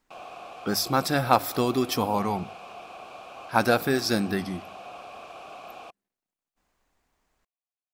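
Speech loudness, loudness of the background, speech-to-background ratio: -25.5 LUFS, -42.5 LUFS, 17.0 dB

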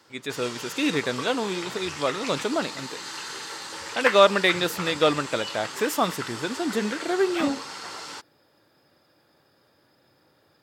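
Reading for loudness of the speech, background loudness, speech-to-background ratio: -25.5 LUFS, -33.5 LUFS, 8.0 dB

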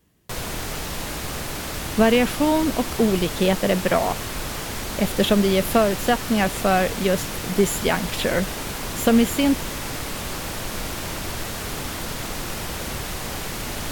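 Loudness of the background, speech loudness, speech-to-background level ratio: -29.0 LUFS, -21.5 LUFS, 7.5 dB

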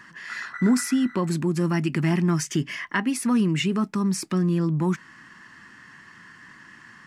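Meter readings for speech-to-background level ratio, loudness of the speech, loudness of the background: 13.5 dB, -24.0 LUFS, -37.5 LUFS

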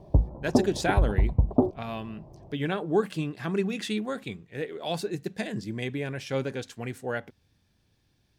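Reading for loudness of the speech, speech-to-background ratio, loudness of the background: -31.5 LUFS, -4.5 dB, -27.0 LUFS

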